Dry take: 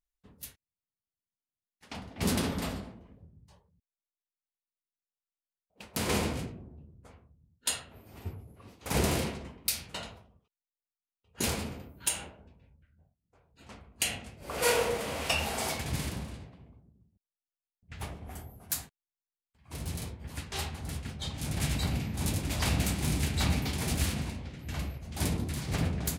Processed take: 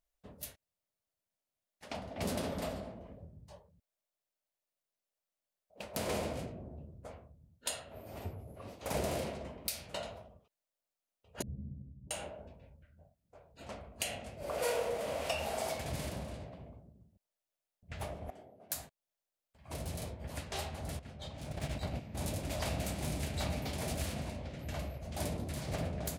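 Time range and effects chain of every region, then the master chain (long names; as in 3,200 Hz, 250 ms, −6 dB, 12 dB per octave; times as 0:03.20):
0:11.42–0:12.11: transistor ladder low-pass 210 Hz, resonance 30% + double-tracking delay 15 ms −2.5 dB
0:18.30–0:18.72: band-pass filter 350–2,400 Hz + parametric band 1,200 Hz −15 dB 2.2 octaves
0:20.99–0:22.15: phase distortion by the signal itself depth 0.053 ms + noise gate −32 dBFS, range −9 dB + high-shelf EQ 6,400 Hz −8 dB
whole clip: parametric band 610 Hz +12.5 dB 0.56 octaves; downward compressor 2 to 1, threshold −45 dBFS; level +2.5 dB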